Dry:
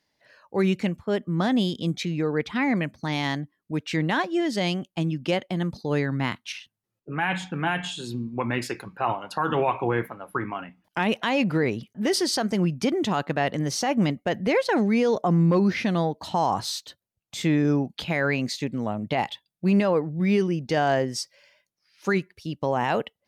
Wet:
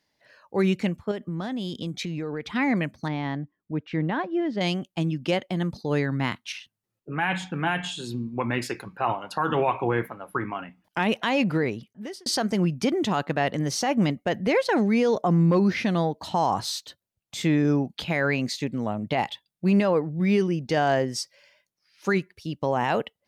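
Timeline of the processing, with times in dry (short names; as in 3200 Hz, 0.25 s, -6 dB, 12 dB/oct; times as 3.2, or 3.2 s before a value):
1.11–2.46 compressor, threshold -27 dBFS
3.08–4.61 tape spacing loss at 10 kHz 36 dB
11.5–12.26 fade out linear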